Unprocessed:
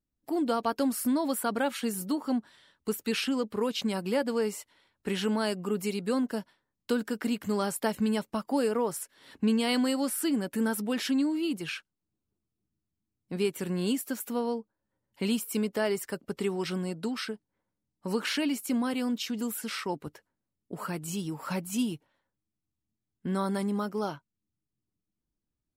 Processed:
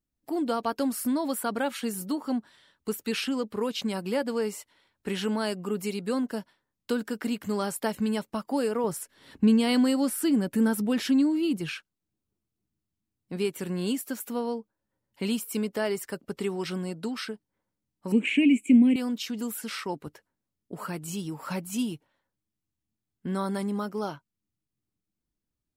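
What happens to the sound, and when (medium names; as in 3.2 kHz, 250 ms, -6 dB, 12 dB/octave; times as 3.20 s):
8.84–11.75 s: bass shelf 260 Hz +9.5 dB
18.12–18.96 s: FFT filter 110 Hz 0 dB, 250 Hz +12 dB, 1.4 kHz -22 dB, 2.4 kHz +13 dB, 5 kHz -29 dB, 7.7 kHz 0 dB, 12 kHz -23 dB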